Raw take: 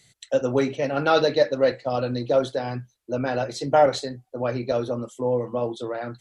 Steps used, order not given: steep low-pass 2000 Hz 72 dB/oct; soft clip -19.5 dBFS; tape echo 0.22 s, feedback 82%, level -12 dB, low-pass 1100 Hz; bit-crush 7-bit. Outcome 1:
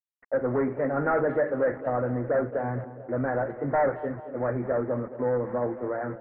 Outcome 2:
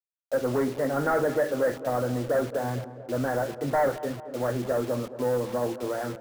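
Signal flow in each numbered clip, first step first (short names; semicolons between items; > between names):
soft clip > bit-crush > steep low-pass > tape echo; soft clip > steep low-pass > bit-crush > tape echo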